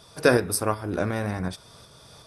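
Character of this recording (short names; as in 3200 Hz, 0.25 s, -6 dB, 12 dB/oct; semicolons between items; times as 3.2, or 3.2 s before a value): tremolo saw up 2.7 Hz, depth 40%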